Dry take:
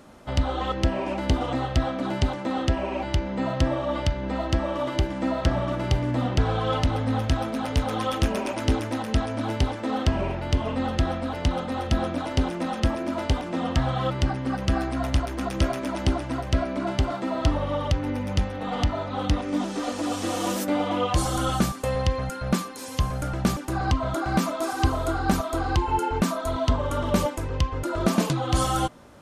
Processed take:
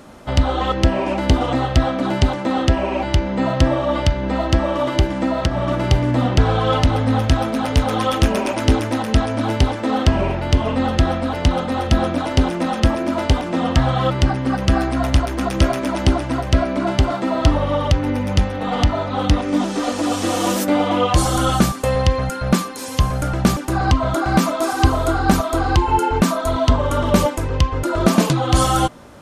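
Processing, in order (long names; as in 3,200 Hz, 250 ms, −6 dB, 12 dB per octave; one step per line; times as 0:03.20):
0:05.17–0:05.68: downward compressor, threshold −22 dBFS, peak gain reduction 7 dB
level +7.5 dB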